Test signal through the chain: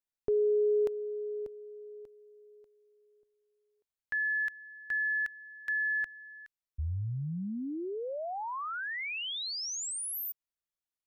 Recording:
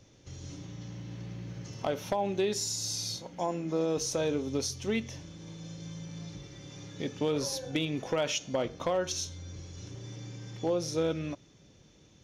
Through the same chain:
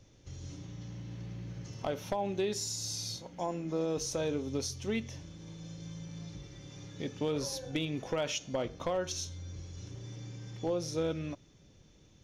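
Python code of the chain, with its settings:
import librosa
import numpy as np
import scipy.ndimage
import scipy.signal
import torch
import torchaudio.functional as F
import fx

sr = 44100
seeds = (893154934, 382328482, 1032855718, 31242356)

y = fx.low_shelf(x, sr, hz=62.0, db=11.5)
y = F.gain(torch.from_numpy(y), -3.5).numpy()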